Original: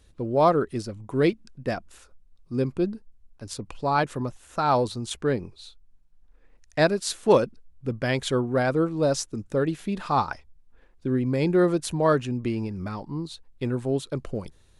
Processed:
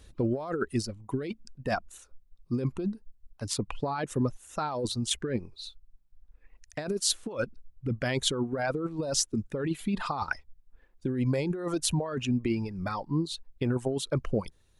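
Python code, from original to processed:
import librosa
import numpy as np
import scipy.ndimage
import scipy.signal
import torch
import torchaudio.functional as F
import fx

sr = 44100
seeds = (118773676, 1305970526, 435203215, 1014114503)

y = fx.dereverb_blind(x, sr, rt60_s=1.9)
y = fx.over_compress(y, sr, threshold_db=-29.0, ratio=-1.0)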